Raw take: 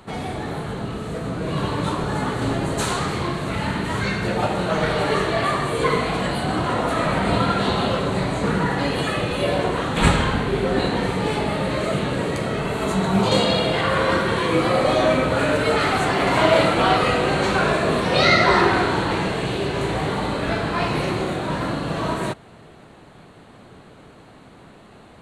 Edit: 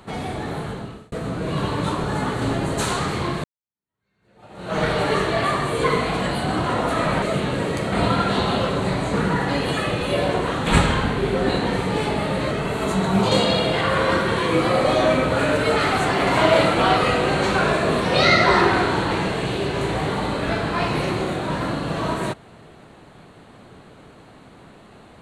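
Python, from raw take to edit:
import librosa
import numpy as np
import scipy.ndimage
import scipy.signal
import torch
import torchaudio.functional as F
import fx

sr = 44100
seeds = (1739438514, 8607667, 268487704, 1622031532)

y = fx.edit(x, sr, fx.fade_out_span(start_s=0.65, length_s=0.47),
    fx.fade_in_span(start_s=3.44, length_s=1.34, curve='exp'),
    fx.move(start_s=11.81, length_s=0.7, to_s=7.22), tone=tone)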